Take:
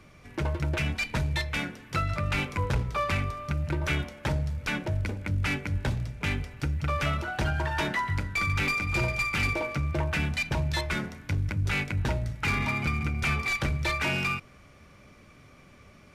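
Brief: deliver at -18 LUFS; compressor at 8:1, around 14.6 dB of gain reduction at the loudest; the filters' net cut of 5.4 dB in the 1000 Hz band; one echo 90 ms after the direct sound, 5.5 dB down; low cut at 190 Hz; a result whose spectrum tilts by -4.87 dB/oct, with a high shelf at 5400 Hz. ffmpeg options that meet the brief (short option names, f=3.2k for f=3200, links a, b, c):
-af "highpass=190,equalizer=f=1k:t=o:g=-6.5,highshelf=f=5.4k:g=-6,acompressor=threshold=-43dB:ratio=8,aecho=1:1:90:0.531,volume=26.5dB"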